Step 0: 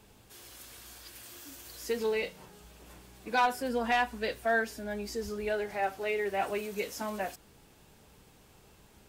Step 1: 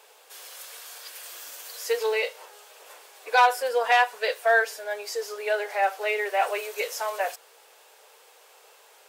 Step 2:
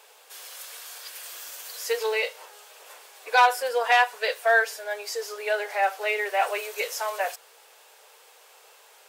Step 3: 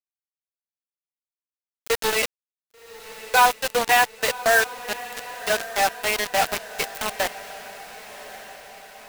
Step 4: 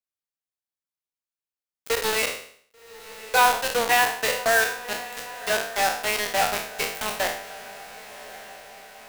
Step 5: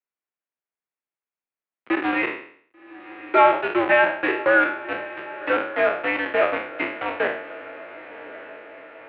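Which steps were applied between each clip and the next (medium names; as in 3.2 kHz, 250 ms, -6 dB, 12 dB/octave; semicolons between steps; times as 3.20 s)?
elliptic high-pass 470 Hz, stop band 70 dB; trim +8.5 dB
bass shelf 470 Hz -5.5 dB; trim +1.5 dB
bit crusher 4-bit; echo that smears into a reverb 1137 ms, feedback 55%, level -15 dB; trim +1.5 dB
spectral sustain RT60 0.57 s; trim -3 dB
mistuned SSB -130 Hz 330–2700 Hz; trim +3.5 dB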